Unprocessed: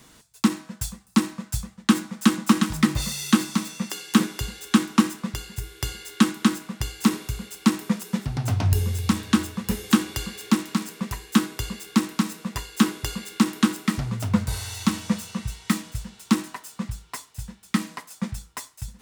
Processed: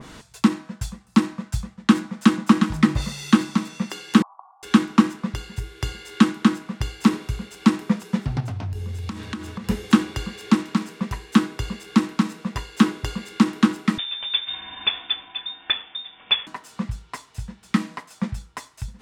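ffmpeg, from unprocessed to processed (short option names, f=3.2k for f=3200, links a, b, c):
-filter_complex "[0:a]asettb=1/sr,asplit=3[a][b][c];[a]atrim=end=4.224[d];[b]atrim=start=4.22:end=4.63,asetpts=PTS-STARTPTS,afade=t=in:d=0.004:c=qsin,afade=t=out:st=0.406:d=0.004:c=qsin,asuperpass=centerf=900:order=12:qfactor=1.8[e];[c]atrim=start=4.626[f];[d][e]acrossfade=d=0.004:c1=hsin:c2=qsin[g];[g][f]acrossfade=d=0.004:c1=qsin:c2=hsin,asettb=1/sr,asplit=3[h][i][j];[h]atrim=end=8.404[k];[i]atrim=start=8.4:end=9.67,asetpts=PTS-STARTPTS,afade=t=in:d=0.004:c=qsin,afade=t=out:st=1.266:d=0.004:c=qsin,acompressor=threshold=-30dB:ratio=5:attack=3.2:release=140:knee=1:detection=peak[l];[j]atrim=start=9.666[m];[k][l]acrossfade=d=0.004:c1=hsin:c2=qsin[n];[n][m]acrossfade=d=0.004:c1=qsin:c2=hsin,asettb=1/sr,asplit=3[o][p][q];[o]atrim=end=13.984[r];[p]atrim=start=13.98:end=16.47,asetpts=PTS-STARTPTS,afade=t=in:d=0.004:c=qsin,afade=t=out:st=2.486:d=0.004:c=qsin,lowpass=f=3.1k:t=q:w=0.5098,lowpass=f=3.1k:t=q:w=0.6013,lowpass=f=3.1k:t=q:w=0.9,lowpass=f=3.1k:t=q:w=2.563,afreqshift=-3700[s];[q]atrim=start=16.466[t];[r][s]acrossfade=d=0.004:c1=hsin:c2=qsin[u];[u][t]acrossfade=d=0.004:c1=qsin:c2=hsin,aemphasis=mode=reproduction:type=50fm,acompressor=mode=upward:threshold=-34dB:ratio=2.5,adynamicequalizer=threshold=0.0126:dfrequency=2000:dqfactor=0.7:tfrequency=2000:tqfactor=0.7:attack=5:release=100:ratio=0.375:range=2:mode=cutabove:tftype=highshelf,volume=2.5dB"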